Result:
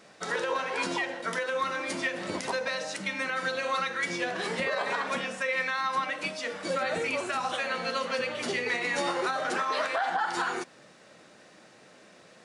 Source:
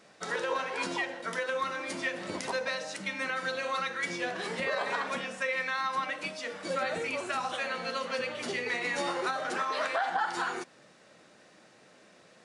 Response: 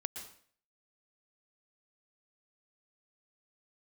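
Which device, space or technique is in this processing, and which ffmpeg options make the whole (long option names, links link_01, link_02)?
clipper into limiter: -af "asoftclip=type=hard:threshold=-19.5dB,alimiter=limit=-22.5dB:level=0:latency=1:release=111,volume=3.5dB"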